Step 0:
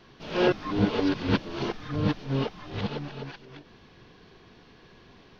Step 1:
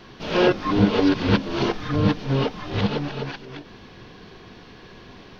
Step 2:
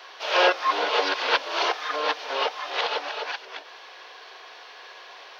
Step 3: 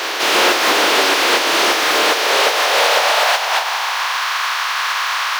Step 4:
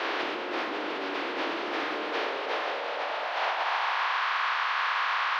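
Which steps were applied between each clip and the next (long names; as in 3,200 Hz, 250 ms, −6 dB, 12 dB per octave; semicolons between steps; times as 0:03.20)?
downward compressor 1.5 to 1, threshold −29 dBFS, peak gain reduction 4.5 dB; on a send at −18 dB: convolution reverb RT60 0.30 s, pre-delay 3 ms; on the sum: level +9 dB
inverse Chebyshev high-pass filter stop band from 170 Hz, stop band 60 dB; level +4.5 dB
compressing power law on the bin magnitudes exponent 0.33; mid-hump overdrive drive 34 dB, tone 3,000 Hz, clips at −6 dBFS; high-pass filter sweep 330 Hz → 1,100 Hz, 0:01.84–0:04.28
dynamic equaliser 290 Hz, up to +7 dB, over −37 dBFS, Q 1.9; compressor whose output falls as the input rises −19 dBFS, ratio −1; high-frequency loss of the air 310 metres; level −8.5 dB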